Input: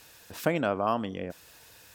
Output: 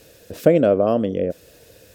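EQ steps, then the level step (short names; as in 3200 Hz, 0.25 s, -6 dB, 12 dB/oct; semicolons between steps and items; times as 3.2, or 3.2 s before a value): resonant low shelf 700 Hz +8.5 dB, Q 3; +1.5 dB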